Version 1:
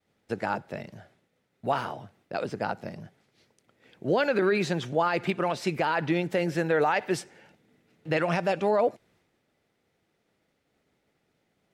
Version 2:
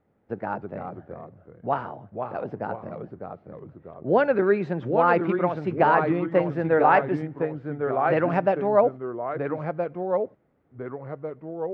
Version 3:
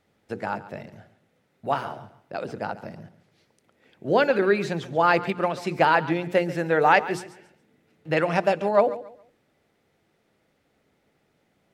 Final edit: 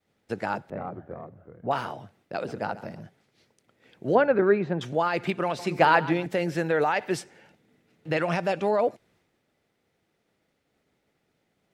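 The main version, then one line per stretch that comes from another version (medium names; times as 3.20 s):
1
0.70–1.71 s: from 2
2.37–3.02 s: from 3
4.15–4.81 s: from 2
5.59–6.26 s: from 3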